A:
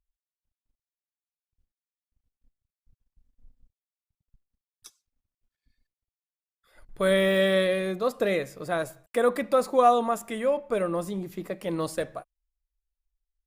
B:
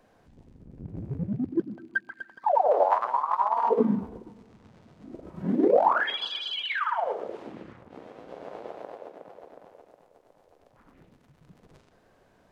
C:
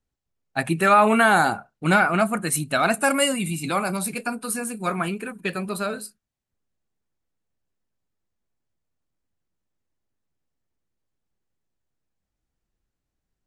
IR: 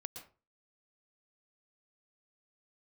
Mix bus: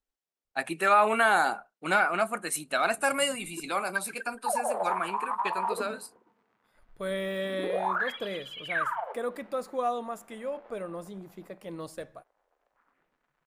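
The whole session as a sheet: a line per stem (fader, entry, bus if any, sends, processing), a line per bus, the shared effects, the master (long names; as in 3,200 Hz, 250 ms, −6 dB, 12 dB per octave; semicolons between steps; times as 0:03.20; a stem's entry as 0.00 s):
−10.0 dB, 0.00 s, no send, no processing
+2.0 dB, 2.00 s, no send, resonant band-pass 1,500 Hz, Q 1.2; brickwall limiter −22 dBFS, peak gain reduction 7.5 dB; expander for the loud parts 1.5 to 1, over −45 dBFS
−5.0 dB, 0.00 s, no send, high-pass filter 380 Hz 12 dB per octave; high-shelf EQ 10,000 Hz −5 dB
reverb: not used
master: no processing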